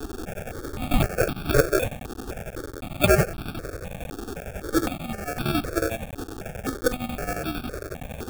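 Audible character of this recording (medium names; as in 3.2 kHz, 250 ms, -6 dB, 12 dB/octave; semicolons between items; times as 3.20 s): a quantiser's noise floor 6-bit, dither triangular; chopped level 11 Hz, depth 60%, duty 65%; aliases and images of a low sample rate 1 kHz, jitter 0%; notches that jump at a steady rate 3.9 Hz 590–1900 Hz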